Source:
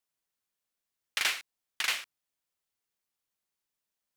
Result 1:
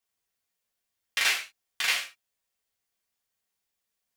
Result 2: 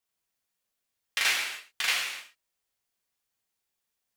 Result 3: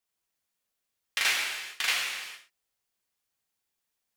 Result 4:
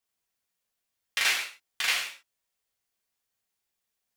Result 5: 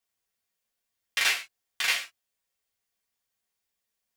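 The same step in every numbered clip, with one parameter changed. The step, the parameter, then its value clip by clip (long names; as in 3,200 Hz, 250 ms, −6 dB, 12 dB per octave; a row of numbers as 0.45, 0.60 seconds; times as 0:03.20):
reverb whose tail is shaped and stops, gate: 120, 320, 470, 200, 80 milliseconds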